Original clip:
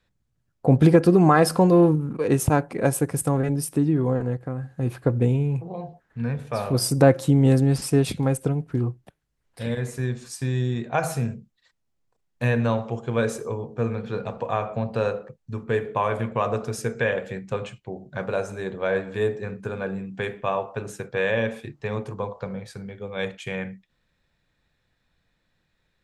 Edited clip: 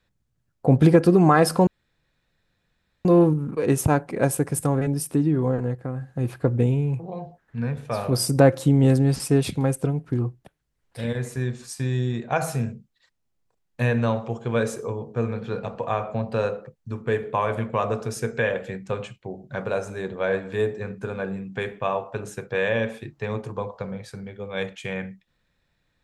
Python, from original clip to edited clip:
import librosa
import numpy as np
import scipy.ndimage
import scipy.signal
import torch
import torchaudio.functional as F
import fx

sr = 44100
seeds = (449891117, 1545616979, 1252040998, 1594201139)

y = fx.edit(x, sr, fx.insert_room_tone(at_s=1.67, length_s=1.38), tone=tone)